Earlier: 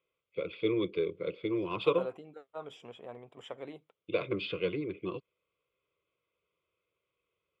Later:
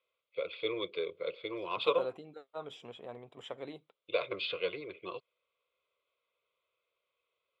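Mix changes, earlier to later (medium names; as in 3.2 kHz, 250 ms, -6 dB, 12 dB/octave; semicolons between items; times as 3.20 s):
first voice: add resonant low shelf 400 Hz -13 dB, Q 1.5; master: add peaking EQ 4 kHz +9.5 dB 0.32 oct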